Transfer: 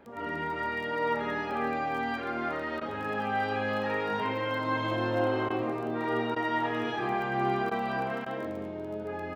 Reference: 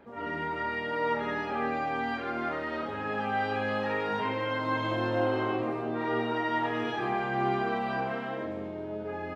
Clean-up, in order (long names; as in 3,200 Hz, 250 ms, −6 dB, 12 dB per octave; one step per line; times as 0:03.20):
click removal
repair the gap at 0:02.80/0:05.49/0:06.35/0:07.70/0:08.25, 11 ms